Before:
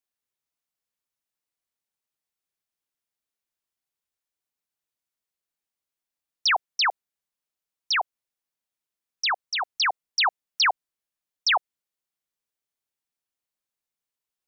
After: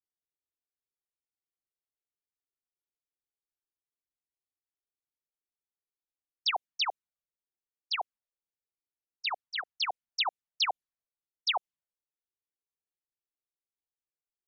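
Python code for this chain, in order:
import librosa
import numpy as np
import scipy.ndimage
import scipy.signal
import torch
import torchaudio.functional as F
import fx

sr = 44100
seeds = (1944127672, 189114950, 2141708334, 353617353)

y = fx.env_flanger(x, sr, rest_ms=2.5, full_db=-21.0)
y = fx.env_lowpass(y, sr, base_hz=540.0, full_db=-26.0)
y = y * librosa.db_to_amplitude(-4.0)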